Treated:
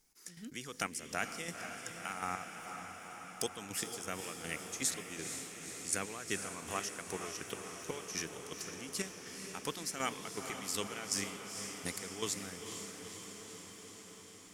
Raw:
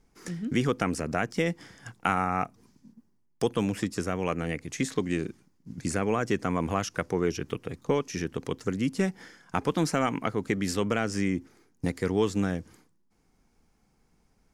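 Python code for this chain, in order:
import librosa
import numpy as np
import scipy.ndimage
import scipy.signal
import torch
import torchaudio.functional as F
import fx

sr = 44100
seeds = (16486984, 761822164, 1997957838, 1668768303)

p1 = F.preemphasis(torch.from_numpy(x), 0.97).numpy()
p2 = fx.chopper(p1, sr, hz=2.7, depth_pct=65, duty_pct=35)
p3 = fx.low_shelf(p2, sr, hz=500.0, db=7.5)
p4 = p3 + fx.echo_diffused(p3, sr, ms=477, feedback_pct=73, wet_db=-7.0, dry=0)
y = p4 * librosa.db_to_amplitude(6.5)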